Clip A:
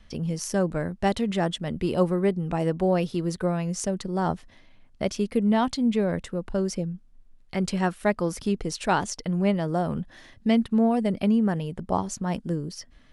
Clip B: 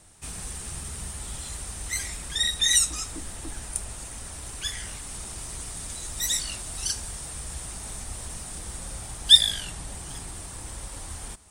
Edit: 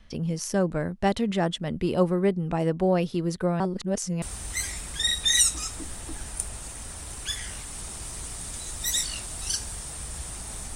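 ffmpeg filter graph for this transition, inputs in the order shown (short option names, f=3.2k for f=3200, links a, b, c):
-filter_complex "[0:a]apad=whole_dur=10.75,atrim=end=10.75,asplit=2[a][b];[a]atrim=end=3.602[c];[b]atrim=start=3.598:end=4.222,asetpts=PTS-STARTPTS,areverse[d];[1:a]atrim=start=1.578:end=8.11[e];[c][d]acrossfade=d=0.004:c1=hsin:c2=hsin[f];[f][e]acrossfade=d=0.004:c1=hsin:c2=hsin"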